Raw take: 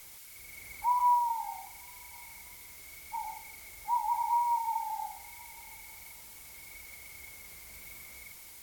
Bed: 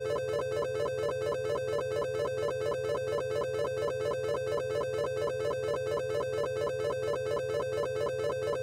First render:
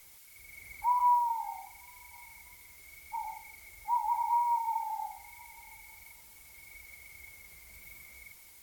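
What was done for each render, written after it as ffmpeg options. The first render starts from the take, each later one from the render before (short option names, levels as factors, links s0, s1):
-af "afftdn=nr=6:nf=-50"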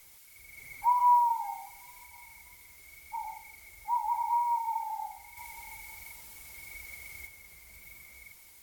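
-filter_complex "[0:a]asettb=1/sr,asplit=3[s0][s1][s2];[s0]atrim=end=0.574[s3];[s1]atrim=start=0.57:end=2.05,asetpts=PTS-STARTPTS,afade=t=in:d=0.004:c=qsin,afade=t=out:st=1.476:d=0.004:c=qsin,aecho=1:1:7.4:0.71,atrim=end_sample=65268[s4];[s2]atrim=start=2.046[s5];[s3][s4]acrossfade=d=0.004:c1=hsin:c2=qsin[s6];[s6][s5]acrossfade=d=0.004:c1=qsin:c2=hsin,asettb=1/sr,asplit=3[s7][s8][s9];[s7]atrim=end=5.374[s10];[s8]atrim=start=5.37:end=7.27,asetpts=PTS-STARTPTS,afade=t=in:d=0.004:c=qsin,afade=t=out:st=1.896:d=0.004:c=qsin,acontrast=39[s11];[s9]atrim=start=7.266[s12];[s10][s11]acrossfade=d=0.004:c1=hsin:c2=qsin[s13];[s13][s12]acrossfade=d=0.004:c1=qsin:c2=hsin"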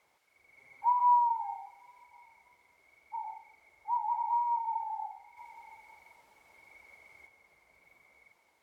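-af "bandpass=f=690:t=q:w=1:csg=0"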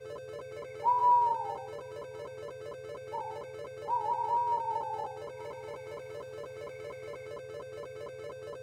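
-filter_complex "[1:a]volume=0.282[s0];[0:a][s0]amix=inputs=2:normalize=0"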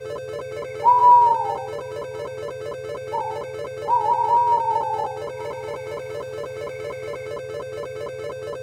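-af "volume=3.98"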